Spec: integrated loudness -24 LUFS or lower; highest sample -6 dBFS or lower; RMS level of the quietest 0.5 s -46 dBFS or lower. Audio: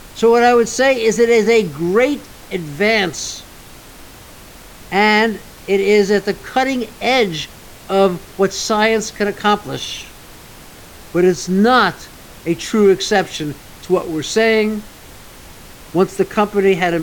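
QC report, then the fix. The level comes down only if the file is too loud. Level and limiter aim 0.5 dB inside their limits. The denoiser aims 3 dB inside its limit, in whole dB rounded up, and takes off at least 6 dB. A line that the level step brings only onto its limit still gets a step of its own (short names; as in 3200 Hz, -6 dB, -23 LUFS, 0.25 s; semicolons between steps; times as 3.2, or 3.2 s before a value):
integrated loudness -16.0 LUFS: fail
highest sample -3.0 dBFS: fail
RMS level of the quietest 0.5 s -39 dBFS: fail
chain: gain -8.5 dB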